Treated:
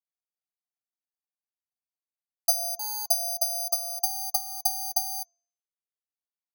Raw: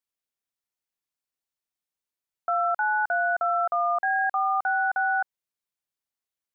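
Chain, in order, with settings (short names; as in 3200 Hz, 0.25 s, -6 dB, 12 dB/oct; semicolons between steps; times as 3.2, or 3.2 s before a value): vocal tract filter a; treble ducked by the level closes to 470 Hz, closed at -28 dBFS; low shelf 460 Hz +8.5 dB; transient shaper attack +9 dB, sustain -7 dB; careless resampling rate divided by 8×, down none, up zero stuff; de-hum 346.3 Hz, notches 25; gain -7 dB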